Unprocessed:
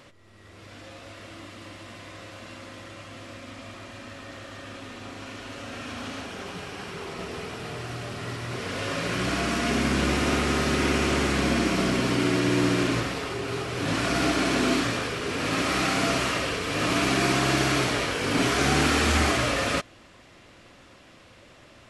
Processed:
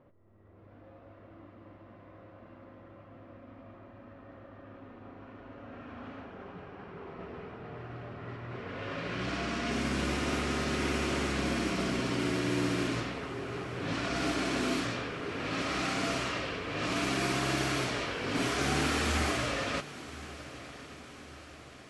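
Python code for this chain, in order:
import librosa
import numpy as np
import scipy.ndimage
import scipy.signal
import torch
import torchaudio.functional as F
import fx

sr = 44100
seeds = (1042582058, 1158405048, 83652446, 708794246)

y = fx.env_lowpass(x, sr, base_hz=780.0, full_db=-19.0)
y = fx.echo_diffused(y, sr, ms=1057, feedback_pct=58, wet_db=-15.5)
y = F.gain(torch.from_numpy(y), -7.5).numpy()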